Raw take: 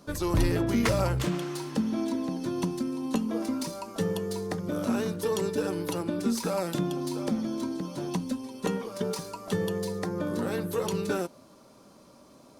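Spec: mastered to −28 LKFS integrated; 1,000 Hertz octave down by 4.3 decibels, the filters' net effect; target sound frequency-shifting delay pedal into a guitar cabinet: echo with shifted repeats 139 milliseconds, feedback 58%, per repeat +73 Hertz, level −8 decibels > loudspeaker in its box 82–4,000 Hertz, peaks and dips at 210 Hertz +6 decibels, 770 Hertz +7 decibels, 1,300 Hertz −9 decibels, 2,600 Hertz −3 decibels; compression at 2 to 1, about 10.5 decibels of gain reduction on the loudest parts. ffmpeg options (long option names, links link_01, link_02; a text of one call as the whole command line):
ffmpeg -i in.wav -filter_complex "[0:a]equalizer=frequency=1000:width_type=o:gain=-8.5,acompressor=threshold=-39dB:ratio=2,asplit=8[link_01][link_02][link_03][link_04][link_05][link_06][link_07][link_08];[link_02]adelay=139,afreqshift=73,volume=-8dB[link_09];[link_03]adelay=278,afreqshift=146,volume=-12.7dB[link_10];[link_04]adelay=417,afreqshift=219,volume=-17.5dB[link_11];[link_05]adelay=556,afreqshift=292,volume=-22.2dB[link_12];[link_06]adelay=695,afreqshift=365,volume=-26.9dB[link_13];[link_07]adelay=834,afreqshift=438,volume=-31.7dB[link_14];[link_08]adelay=973,afreqshift=511,volume=-36.4dB[link_15];[link_01][link_09][link_10][link_11][link_12][link_13][link_14][link_15]amix=inputs=8:normalize=0,highpass=82,equalizer=frequency=210:width_type=q:width=4:gain=6,equalizer=frequency=770:width_type=q:width=4:gain=7,equalizer=frequency=1300:width_type=q:width=4:gain=-9,equalizer=frequency=2600:width_type=q:width=4:gain=-3,lowpass=frequency=4000:width=0.5412,lowpass=frequency=4000:width=1.3066,volume=7.5dB" out.wav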